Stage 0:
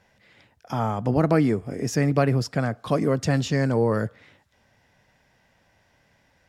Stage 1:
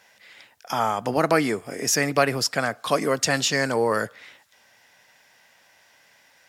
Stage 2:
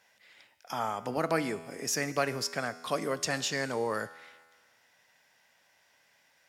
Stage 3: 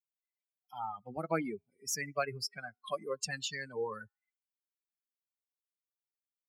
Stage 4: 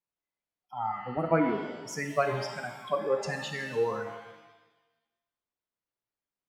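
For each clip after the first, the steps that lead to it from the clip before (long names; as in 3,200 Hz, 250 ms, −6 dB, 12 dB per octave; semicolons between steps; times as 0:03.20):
high-pass filter 1,200 Hz 6 dB per octave; high-shelf EQ 7,200 Hz +7 dB; level +9 dB
tuned comb filter 82 Hz, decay 1.6 s, harmonics all, mix 60%; level −2 dB
spectral dynamics exaggerated over time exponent 3
low-pass filter 1,100 Hz 6 dB per octave; reverb with rising layers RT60 1.1 s, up +7 semitones, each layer −8 dB, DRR 4.5 dB; level +8.5 dB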